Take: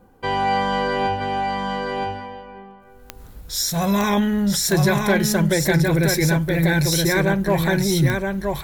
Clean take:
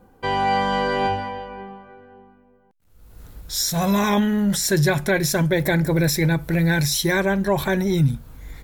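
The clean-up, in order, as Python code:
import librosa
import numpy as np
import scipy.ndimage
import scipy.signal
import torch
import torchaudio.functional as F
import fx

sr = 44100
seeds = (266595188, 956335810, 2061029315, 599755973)

y = fx.fix_declip(x, sr, threshold_db=-9.5)
y = fx.fix_declick_ar(y, sr, threshold=10.0)
y = fx.fix_echo_inverse(y, sr, delay_ms=971, level_db=-4.0)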